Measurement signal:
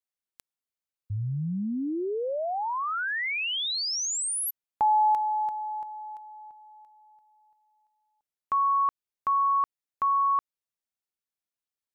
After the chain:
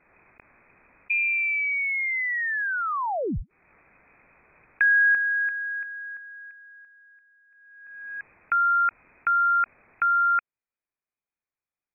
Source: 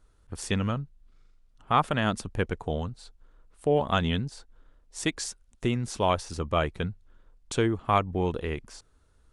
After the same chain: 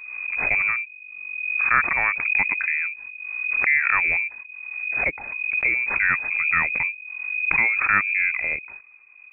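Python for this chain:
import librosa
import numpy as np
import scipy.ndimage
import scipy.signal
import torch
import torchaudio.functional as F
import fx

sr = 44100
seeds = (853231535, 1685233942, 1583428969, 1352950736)

y = fx.low_shelf(x, sr, hz=110.0, db=6.5)
y = fx.freq_invert(y, sr, carrier_hz=2500)
y = fx.pre_swell(y, sr, db_per_s=37.0)
y = y * 10.0 ** (2.5 / 20.0)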